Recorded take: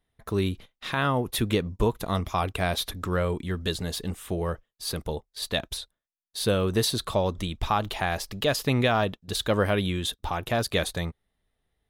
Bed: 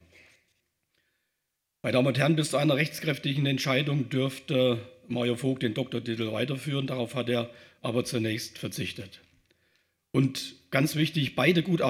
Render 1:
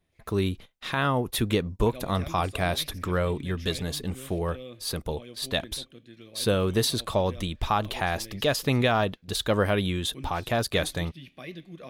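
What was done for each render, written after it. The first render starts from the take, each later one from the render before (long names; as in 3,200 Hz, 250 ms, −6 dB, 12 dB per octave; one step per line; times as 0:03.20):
mix in bed −18 dB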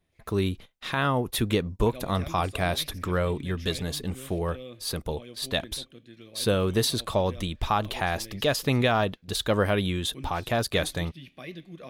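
no processing that can be heard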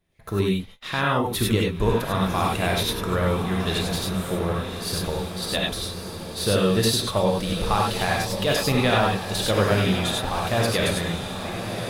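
on a send: feedback delay with all-pass diffusion 1,127 ms, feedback 56%, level −8.5 dB
on the sum: reverb whose tail is shaped and stops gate 120 ms rising, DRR −1.5 dB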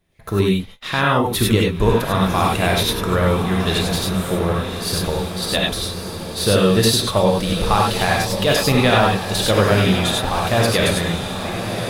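level +5.5 dB
brickwall limiter −3 dBFS, peak gain reduction 1.5 dB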